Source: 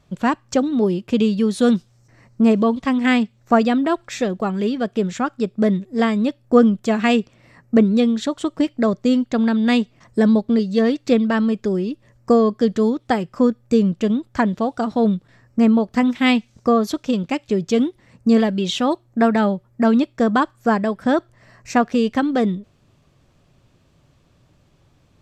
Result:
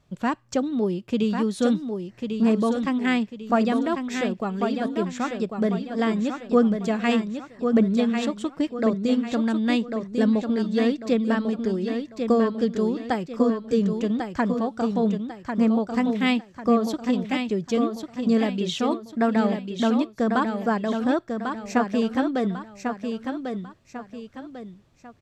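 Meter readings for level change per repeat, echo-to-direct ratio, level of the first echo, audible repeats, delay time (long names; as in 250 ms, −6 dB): −8.5 dB, −5.5 dB, −6.0 dB, 3, 1,096 ms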